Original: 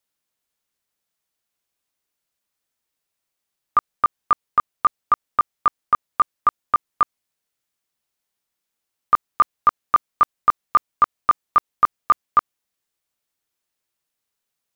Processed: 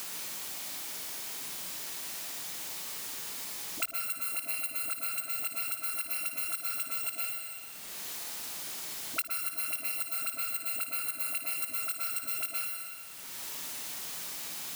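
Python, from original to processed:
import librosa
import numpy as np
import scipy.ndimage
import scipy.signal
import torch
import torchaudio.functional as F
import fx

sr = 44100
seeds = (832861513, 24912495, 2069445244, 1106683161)

y = fx.bit_reversed(x, sr, seeds[0], block=256)
y = scipy.signal.sosfilt(scipy.signal.butter(2, 180.0, 'highpass', fs=sr, output='sos'), y)
y = fx.high_shelf(y, sr, hz=2500.0, db=-10.5)
y = fx.dispersion(y, sr, late='highs', ms=64.0, hz=550.0)
y = fx.quant_dither(y, sr, seeds[1], bits=10, dither='triangular')
y = fx.notch(y, sr, hz=520.0, q=12.0)
y = fx.room_flutter(y, sr, wall_m=9.6, rt60_s=0.31)
y = fx.rev_plate(y, sr, seeds[2], rt60_s=1.0, hf_ratio=1.0, predelay_ms=105, drr_db=-4.0)
y = fx.band_squash(y, sr, depth_pct=100)
y = F.gain(torch.from_numpy(y), -8.5).numpy()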